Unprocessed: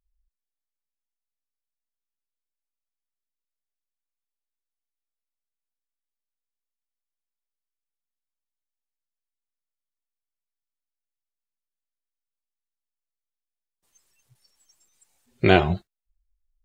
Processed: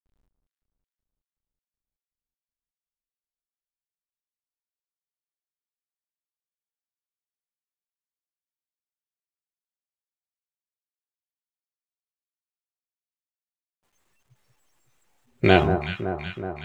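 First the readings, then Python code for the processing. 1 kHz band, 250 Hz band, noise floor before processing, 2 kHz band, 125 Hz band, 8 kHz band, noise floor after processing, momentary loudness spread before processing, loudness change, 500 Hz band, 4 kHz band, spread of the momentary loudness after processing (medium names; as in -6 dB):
+1.0 dB, +1.0 dB, under -85 dBFS, +0.5 dB, +0.5 dB, no reading, under -85 dBFS, 11 LU, -1.5 dB, +1.0 dB, +0.5 dB, 13 LU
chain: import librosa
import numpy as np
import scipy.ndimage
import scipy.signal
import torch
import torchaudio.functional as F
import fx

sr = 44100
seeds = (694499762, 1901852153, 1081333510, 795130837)

y = fx.wiener(x, sr, points=9)
y = fx.quant_dither(y, sr, seeds[0], bits=12, dither='none')
y = fx.echo_alternate(y, sr, ms=187, hz=1400.0, feedback_pct=81, wet_db=-8.0)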